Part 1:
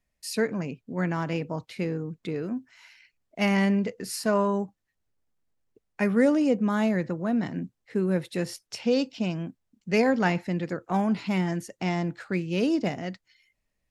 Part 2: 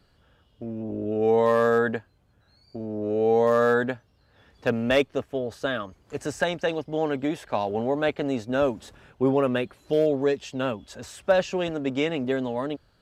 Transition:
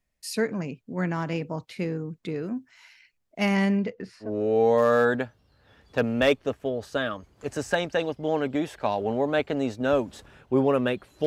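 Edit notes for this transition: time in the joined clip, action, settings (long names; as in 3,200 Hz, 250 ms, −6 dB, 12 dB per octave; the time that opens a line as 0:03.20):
part 1
0:03.77–0:04.30: low-pass filter 6,000 Hz → 1,100 Hz
0:04.25: continue with part 2 from 0:02.94, crossfade 0.10 s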